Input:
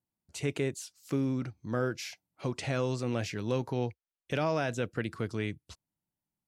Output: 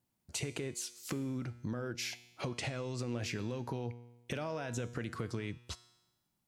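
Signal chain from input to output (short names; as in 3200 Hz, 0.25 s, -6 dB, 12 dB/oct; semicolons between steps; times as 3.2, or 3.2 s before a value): limiter -26.5 dBFS, peak gain reduction 8.5 dB; compressor 6:1, threshold -43 dBFS, peak gain reduction 11.5 dB; resonator 120 Hz, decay 1 s, harmonics all, mix 60%; gain +15 dB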